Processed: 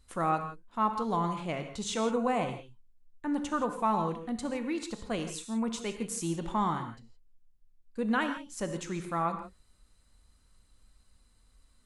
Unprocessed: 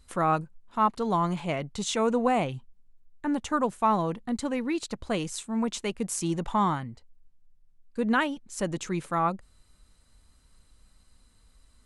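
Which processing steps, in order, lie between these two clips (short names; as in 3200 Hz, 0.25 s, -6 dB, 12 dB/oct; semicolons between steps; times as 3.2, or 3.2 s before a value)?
non-linear reverb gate 0.19 s flat, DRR 6.5 dB; gain -5 dB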